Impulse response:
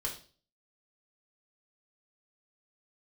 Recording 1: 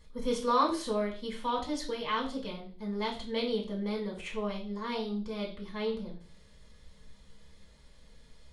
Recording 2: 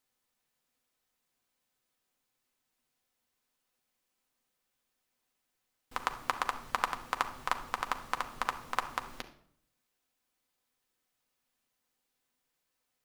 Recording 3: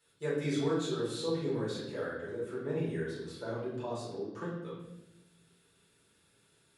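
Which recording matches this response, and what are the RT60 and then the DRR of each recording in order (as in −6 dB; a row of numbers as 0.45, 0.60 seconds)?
1; 0.40, 0.60, 0.90 seconds; −2.5, 5.0, −8.5 decibels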